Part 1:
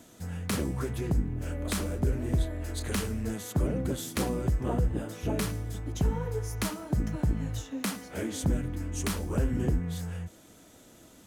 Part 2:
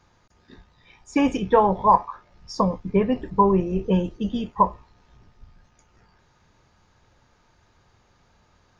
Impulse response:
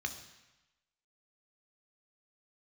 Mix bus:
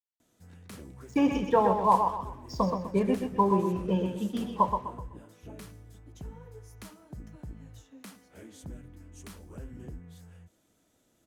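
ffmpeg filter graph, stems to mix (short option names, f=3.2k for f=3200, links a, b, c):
-filter_complex "[0:a]adelay=200,volume=-15.5dB[a];[1:a]highpass=160,aeval=exprs='sgn(val(0))*max(abs(val(0))-0.00531,0)':c=same,volume=-4dB,asplit=3[b][c][d];[c]volume=-11dB[e];[d]volume=-7.5dB[f];[2:a]atrim=start_sample=2205[g];[e][g]afir=irnorm=-1:irlink=0[h];[f]aecho=0:1:126|252|378|504|630:1|0.35|0.122|0.0429|0.015[i];[a][b][h][i]amix=inputs=4:normalize=0"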